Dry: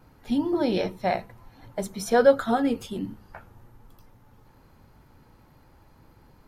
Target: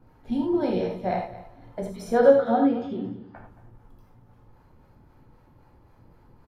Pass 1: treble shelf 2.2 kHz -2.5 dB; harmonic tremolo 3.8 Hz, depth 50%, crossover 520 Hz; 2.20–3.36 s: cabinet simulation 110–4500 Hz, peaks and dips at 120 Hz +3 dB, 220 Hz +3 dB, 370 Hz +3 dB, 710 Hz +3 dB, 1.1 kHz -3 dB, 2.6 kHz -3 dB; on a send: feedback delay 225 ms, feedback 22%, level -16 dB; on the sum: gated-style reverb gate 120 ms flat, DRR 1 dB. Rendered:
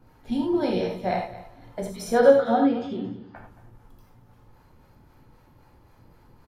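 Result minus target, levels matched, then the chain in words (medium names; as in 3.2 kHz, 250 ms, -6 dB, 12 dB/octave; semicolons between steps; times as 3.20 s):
4 kHz band +5.5 dB
treble shelf 2.2 kHz -11 dB; harmonic tremolo 3.8 Hz, depth 50%, crossover 520 Hz; 2.20–3.36 s: cabinet simulation 110–4500 Hz, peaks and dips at 120 Hz +3 dB, 220 Hz +3 dB, 370 Hz +3 dB, 710 Hz +3 dB, 1.1 kHz -3 dB, 2.6 kHz -3 dB; on a send: feedback delay 225 ms, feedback 22%, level -16 dB; on the sum: gated-style reverb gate 120 ms flat, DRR 1 dB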